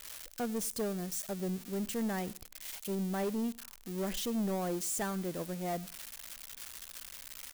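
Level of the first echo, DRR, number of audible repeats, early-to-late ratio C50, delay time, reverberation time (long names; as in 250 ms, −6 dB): −23.0 dB, no reverb audible, 1, no reverb audible, 98 ms, no reverb audible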